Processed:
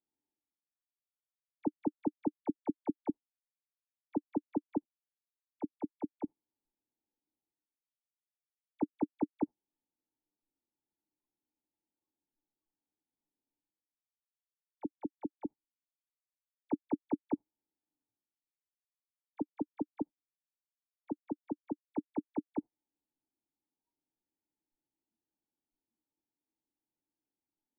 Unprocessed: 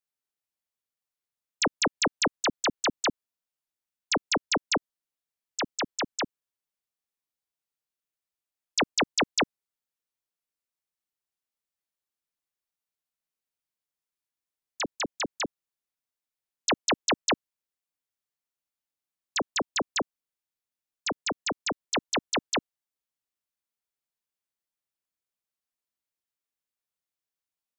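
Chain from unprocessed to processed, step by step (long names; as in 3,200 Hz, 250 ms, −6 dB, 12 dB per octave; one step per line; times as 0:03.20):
noise reduction from a noise print of the clip's start 25 dB
reversed playback
upward compression, threshold −45 dBFS
reversed playback
formant resonators in series u
level +2 dB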